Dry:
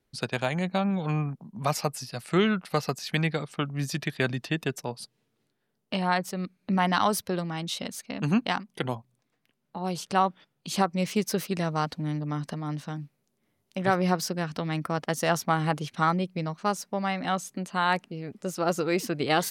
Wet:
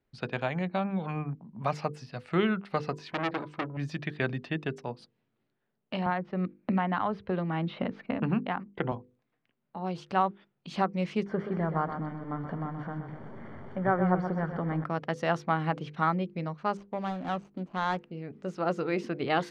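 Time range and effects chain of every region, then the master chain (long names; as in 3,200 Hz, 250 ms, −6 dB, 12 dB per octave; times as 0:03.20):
0:02.92–0:03.77: hollow resonant body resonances 330/990 Hz, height 17 dB, ringing for 90 ms + saturating transformer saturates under 2,800 Hz
0:06.06–0:08.92: noise gate −55 dBFS, range −9 dB + high-frequency loss of the air 360 metres + multiband upward and downward compressor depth 100%
0:11.26–0:14.84: converter with a step at zero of −34 dBFS + Savitzky-Golay smoothing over 41 samples + repeating echo 126 ms, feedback 43%, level −8.5 dB
0:16.77–0:17.99: running median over 25 samples + parametric band 11,000 Hz +4.5 dB 2 octaves
whole clip: low-pass filter 2,700 Hz 12 dB per octave; mains-hum notches 50/100/150/200/250/300/350/400/450/500 Hz; level −2.5 dB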